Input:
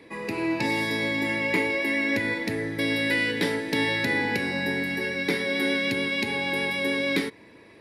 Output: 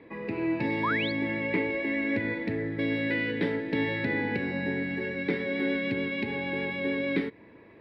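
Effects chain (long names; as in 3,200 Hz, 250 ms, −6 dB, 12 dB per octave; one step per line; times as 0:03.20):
dynamic equaliser 1,000 Hz, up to −5 dB, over −43 dBFS, Q 1.2
sound drawn into the spectrogram rise, 0:00.83–0:01.12, 900–4,800 Hz −25 dBFS
high-frequency loss of the air 460 metres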